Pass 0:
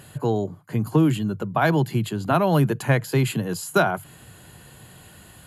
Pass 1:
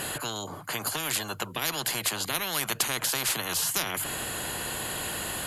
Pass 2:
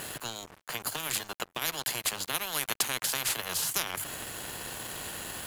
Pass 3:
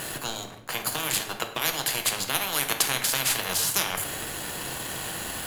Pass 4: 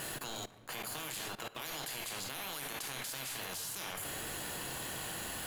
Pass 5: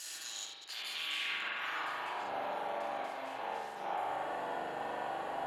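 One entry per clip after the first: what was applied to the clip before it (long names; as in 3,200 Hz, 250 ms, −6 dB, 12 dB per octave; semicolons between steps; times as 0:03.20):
every bin compressed towards the loudest bin 10 to 1; level −2 dB
dead-zone distortion −36 dBFS
rectangular room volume 320 cubic metres, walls mixed, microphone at 0.65 metres; level +4.5 dB
output level in coarse steps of 19 dB; soft clipping −30 dBFS, distortion −14 dB; level −1.5 dB
delay that plays each chunk backwards 107 ms, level −6.5 dB; band-pass filter sweep 5,800 Hz → 730 Hz, 0:00.49–0:02.29; spring reverb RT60 1.2 s, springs 41 ms, chirp 40 ms, DRR −5 dB; level +6 dB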